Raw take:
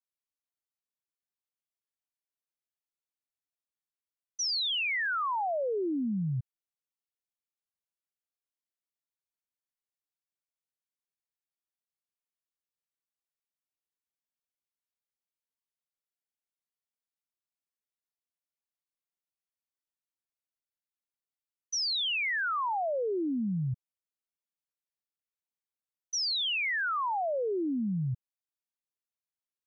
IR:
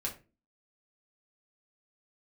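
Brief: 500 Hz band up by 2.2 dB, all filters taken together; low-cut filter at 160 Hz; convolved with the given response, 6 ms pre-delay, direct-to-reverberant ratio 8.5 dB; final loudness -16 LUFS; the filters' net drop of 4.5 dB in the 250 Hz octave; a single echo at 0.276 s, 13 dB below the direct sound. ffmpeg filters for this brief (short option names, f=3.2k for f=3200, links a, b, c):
-filter_complex "[0:a]highpass=160,equalizer=f=250:t=o:g=-6.5,equalizer=f=500:t=o:g=4.5,aecho=1:1:276:0.224,asplit=2[a][b];[1:a]atrim=start_sample=2205,adelay=6[c];[b][c]afir=irnorm=-1:irlink=0,volume=-10.5dB[d];[a][d]amix=inputs=2:normalize=0,volume=13dB"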